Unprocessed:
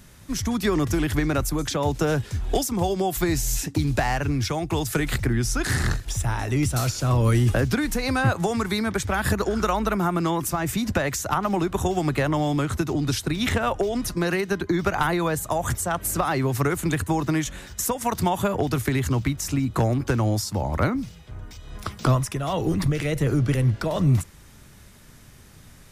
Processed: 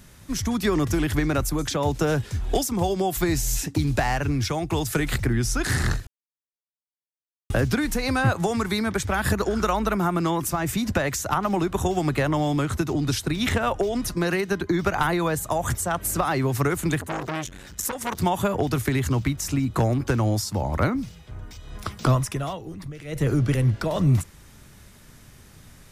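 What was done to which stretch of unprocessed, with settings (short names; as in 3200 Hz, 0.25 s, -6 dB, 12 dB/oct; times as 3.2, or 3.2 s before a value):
6.07–7.5 mute
16.99–18.2 core saturation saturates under 1600 Hz
22.42–23.23 dip -13.5 dB, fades 0.17 s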